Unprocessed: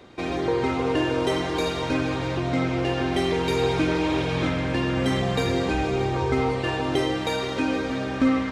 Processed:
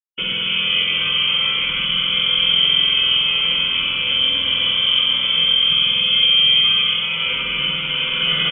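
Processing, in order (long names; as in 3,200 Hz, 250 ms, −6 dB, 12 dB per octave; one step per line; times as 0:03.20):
bit reduction 6 bits
brickwall limiter −20 dBFS, peak gain reduction 10 dB
parametric band 150 Hz +10.5 dB 3 octaves
formants moved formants +4 semitones
single-tap delay 740 ms −4 dB
speech leveller 2 s
comb filter 1 ms, depth 80%
voice inversion scrambler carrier 3,300 Hz
spring reverb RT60 3.6 s, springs 48 ms, chirp 75 ms, DRR −3 dB
level −4 dB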